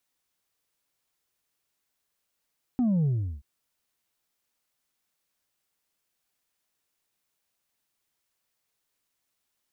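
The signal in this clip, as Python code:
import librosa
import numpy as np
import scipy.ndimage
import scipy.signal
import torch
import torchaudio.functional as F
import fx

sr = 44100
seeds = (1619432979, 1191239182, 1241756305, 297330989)

y = fx.sub_drop(sr, level_db=-21.5, start_hz=260.0, length_s=0.63, drive_db=2.5, fade_s=0.37, end_hz=65.0)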